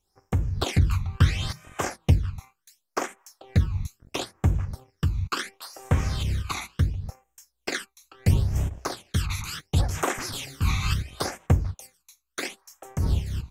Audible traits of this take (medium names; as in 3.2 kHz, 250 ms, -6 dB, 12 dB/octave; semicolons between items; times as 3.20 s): phasing stages 12, 0.72 Hz, lowest notch 520–4400 Hz; random flutter of the level